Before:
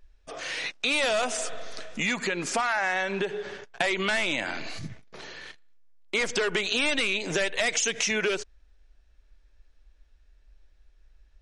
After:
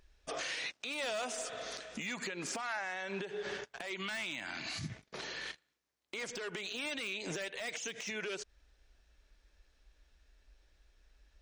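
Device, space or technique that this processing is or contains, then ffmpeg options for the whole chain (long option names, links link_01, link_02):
broadcast voice chain: -filter_complex "[0:a]asettb=1/sr,asplit=3[link_01][link_02][link_03];[link_01]atrim=end=3.964[link_04];[link_02]atrim=start=3.96:end=4.9,asetpts=PTS-STARTPTS,afade=type=in:duration=0.004:curve=qsin,afade=type=out:start_time=0.936:duration=0.004:curve=qsin,equalizer=frequency=490:width_type=o:width=0.64:gain=-13[link_05];[link_03]atrim=start=4.896[link_06];[link_04][link_05]acrossfade=duration=0.004:curve1=hsin:curve2=qsin[link_07];[link_07][link_06]acrossfade=duration=0.004:curve1=qsin:curve2=hsin,highpass=frequency=74:poles=1,deesser=0.7,acompressor=threshold=-35dB:ratio=3,equalizer=frequency=5900:width_type=o:width=2.2:gain=3,alimiter=level_in=5dB:limit=-24dB:level=0:latency=1:release=265,volume=-5dB"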